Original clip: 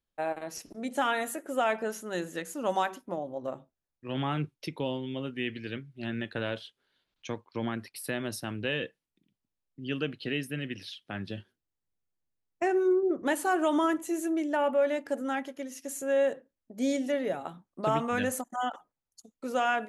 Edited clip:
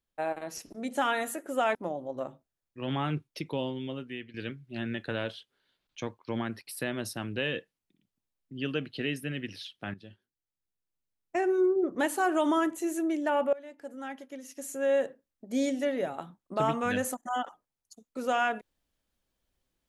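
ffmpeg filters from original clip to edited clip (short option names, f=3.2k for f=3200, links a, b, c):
-filter_complex "[0:a]asplit=5[a][b][c][d][e];[a]atrim=end=1.752[f];[b]atrim=start=3.018:end=5.61,asetpts=PTS-STARTPTS,afade=t=out:st=2.052:d=0.54:silence=0.211349[g];[c]atrim=start=5.61:end=11.21,asetpts=PTS-STARTPTS,afade=t=in:d=0.004:c=hsin:silence=0.211349,afade=t=out:st=5.596:d=0.004:c=hsin:silence=0.211349[h];[d]atrim=start=11.21:end=14.8,asetpts=PTS-STARTPTS,afade=t=in:d=1.71:silence=0.211349,afade=t=out:st=3.586:d=0.004:c=hsin:silence=0.0841395[i];[e]atrim=start=14.8,asetpts=PTS-STARTPTS,afade=t=in:d=1.47:silence=0.0841395[j];[g][h][i][j]concat=n=4:v=0:a=1[k];[f][k]acrossfade=d=0.004:c1=hsin:c2=hsin"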